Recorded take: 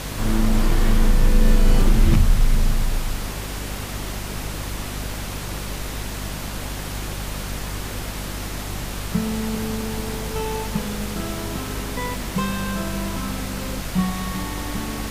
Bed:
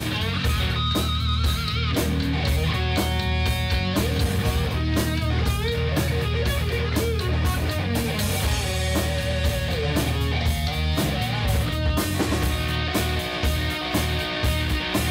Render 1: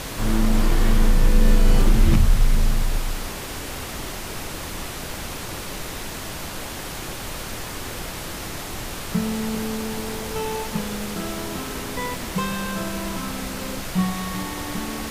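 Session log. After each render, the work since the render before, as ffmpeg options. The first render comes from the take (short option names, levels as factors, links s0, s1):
-af "bandreject=f=50:t=h:w=6,bandreject=f=100:t=h:w=6,bandreject=f=150:t=h:w=6,bandreject=f=200:t=h:w=6,bandreject=f=250:t=h:w=6"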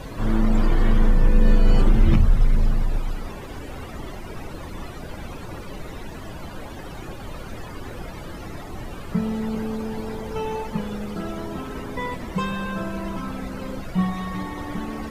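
-af "afftdn=nr=17:nf=-33"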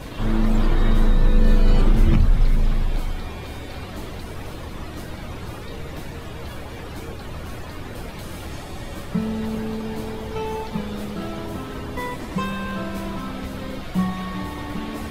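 -filter_complex "[1:a]volume=0.178[s0];[0:a][s0]amix=inputs=2:normalize=0"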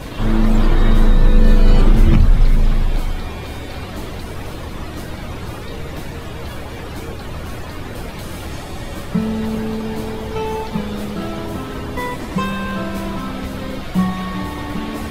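-af "volume=1.78,alimiter=limit=0.891:level=0:latency=1"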